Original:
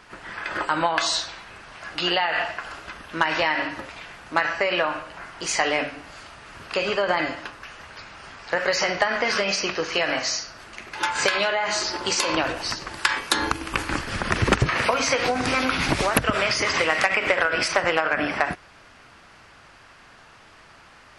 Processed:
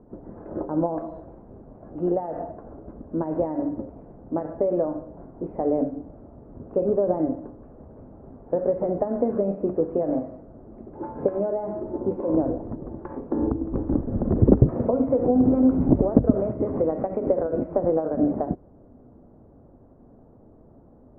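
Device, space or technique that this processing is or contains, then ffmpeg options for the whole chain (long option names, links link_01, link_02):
under water: -af "lowpass=frequency=560:width=0.5412,lowpass=frequency=560:width=1.3066,equalizer=frequency=250:width_type=o:width=0.41:gain=7,volume=5dB"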